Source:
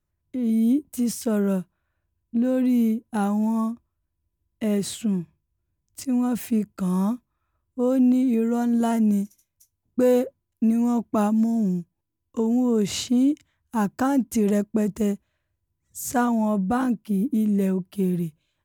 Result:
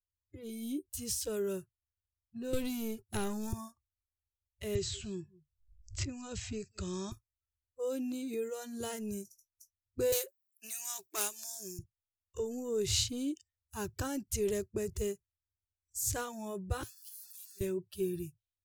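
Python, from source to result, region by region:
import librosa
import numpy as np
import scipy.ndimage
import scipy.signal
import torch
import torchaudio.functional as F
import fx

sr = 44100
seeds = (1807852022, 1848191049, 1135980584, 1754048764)

y = fx.chain(x, sr, fx.highpass(hz=50.0, slope=24),
    fx.leveller(passes=1),
    fx.band_squash(depth_pct=100), at=(2.53, 3.53))
y = fx.chain(y, sr, fx.brickwall_lowpass(high_hz=8100.0),
    fx.echo_single(ms=188, db=-23.0),
    fx.band_squash(depth_pct=70), at=(4.75, 7.12))
y = fx.chain(y, sr, fx.self_delay(depth_ms=0.058),
    fx.tilt_eq(slope=4.5), at=(10.12, 11.79))
y = fx.chain(y, sr, fx.zero_step(step_db=-33.5),
    fx.differentiator(),
    fx.transient(attack_db=-12, sustain_db=-2), at=(16.83, 17.61))
y = fx.noise_reduce_blind(y, sr, reduce_db=27)
y = fx.curve_eq(y, sr, hz=(110.0, 170.0, 240.0, 380.0, 720.0, 4200.0, 14000.0), db=(0, -26, -29, -13, -28, -9, -12))
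y = y * librosa.db_to_amplitude(8.5)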